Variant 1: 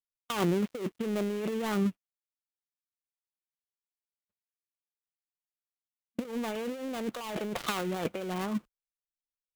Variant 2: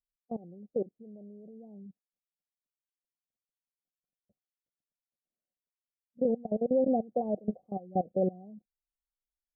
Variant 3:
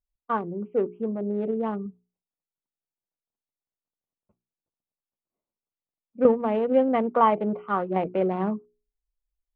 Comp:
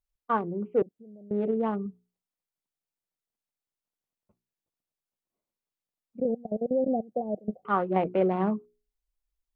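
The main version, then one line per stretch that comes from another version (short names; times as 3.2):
3
0.82–1.31 from 2
6.2–7.65 from 2
not used: 1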